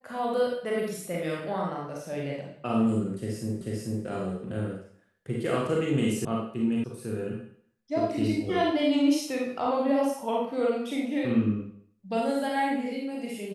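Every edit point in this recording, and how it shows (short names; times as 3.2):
3.61 repeat of the last 0.44 s
6.25 sound cut off
6.84 sound cut off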